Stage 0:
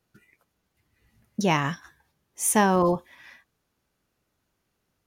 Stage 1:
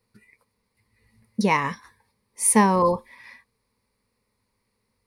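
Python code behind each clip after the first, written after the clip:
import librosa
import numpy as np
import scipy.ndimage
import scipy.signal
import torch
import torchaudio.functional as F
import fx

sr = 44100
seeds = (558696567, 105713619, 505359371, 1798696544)

y = fx.ripple_eq(x, sr, per_octave=0.92, db=12)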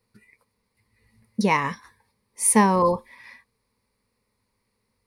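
y = x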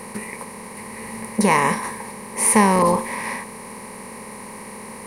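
y = fx.bin_compress(x, sr, power=0.4)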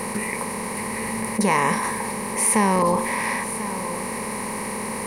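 y = x + 10.0 ** (-22.5 / 20.0) * np.pad(x, (int(1041 * sr / 1000.0), 0))[:len(x)]
y = fx.env_flatten(y, sr, amount_pct=50)
y = F.gain(torch.from_numpy(y), -5.0).numpy()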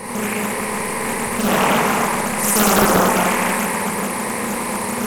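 y = fx.rev_schroeder(x, sr, rt60_s=3.2, comb_ms=26, drr_db=-8.0)
y = fx.doppler_dist(y, sr, depth_ms=1.0)
y = F.gain(torch.from_numpy(y), -2.5).numpy()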